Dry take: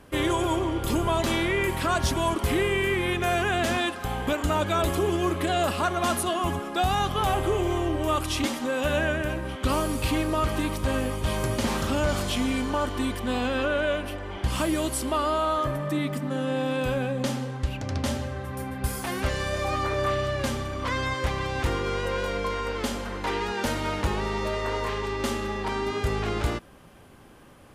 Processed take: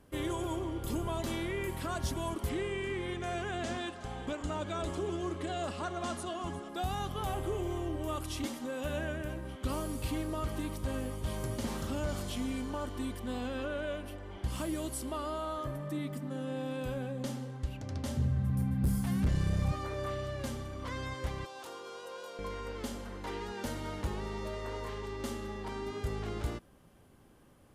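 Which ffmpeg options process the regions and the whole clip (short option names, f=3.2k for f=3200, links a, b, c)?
-filter_complex "[0:a]asettb=1/sr,asplit=3[a][b][c];[a]atrim=end=2.494[d];[b]atrim=start=2.49:end=6.69,asetpts=PTS-STARTPTS,afade=t=in:d=0.004:c=qsin,afade=t=out:st=4.196:d=0.004:c=qsin,lowpass=f=8.5k:w=0.5412,lowpass=f=8.5k:w=1.3066,equalizer=f=65:w=0.49:g=-3.5,aecho=1:1:368:0.168,atrim=end_sample=185220[e];[c]atrim=start=6.686[f];[d][e]acrossfade=d=0.004:c1=hsin:c2=qsin[g];[g][f]acrossfade=d=0.004:c1=qsin:c2=hsin,asettb=1/sr,asplit=3[h][i][j];[h]atrim=end=18.174[k];[i]atrim=start=18.17:end=19.72,asetpts=PTS-STARTPTS,afade=t=in:d=0.004:c=qsin,afade=t=out:st=1.546:d=0.004:c=qsin,lowshelf=f=260:t=q:w=3:g=11,volume=15.5dB,asoftclip=hard,volume=-15.5dB[l];[j]atrim=start=19.716[m];[k][l]acrossfade=d=0.004:c1=hsin:c2=qsin[n];[n][m]acrossfade=d=0.004:c1=qsin:c2=hsin,asettb=1/sr,asplit=3[o][p][q];[o]atrim=end=21.454[r];[p]atrim=start=21.45:end=22.39,asetpts=PTS-STARTPTS,afade=t=in:d=0.004:c=qsin,afade=t=out:st=0.936:d=0.004:c=qsin,highpass=600,equalizer=f=2k:t=o:w=0.56:g=-12[s];[q]atrim=start=22.386[t];[r][s]acrossfade=d=0.004:c1=hsin:c2=qsin[u];[u][t]acrossfade=d=0.004:c1=qsin:c2=hsin,equalizer=f=1.8k:w=0.32:g=-5.5,bandreject=f=2.5k:w=26,volume=-8dB"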